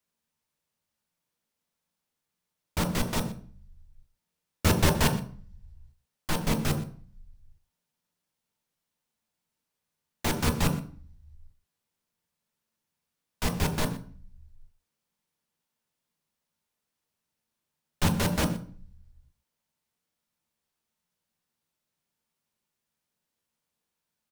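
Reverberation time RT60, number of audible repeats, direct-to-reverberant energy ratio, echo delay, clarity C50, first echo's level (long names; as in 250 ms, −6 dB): 0.45 s, 1, 3.5 dB, 121 ms, 10.0 dB, −17.0 dB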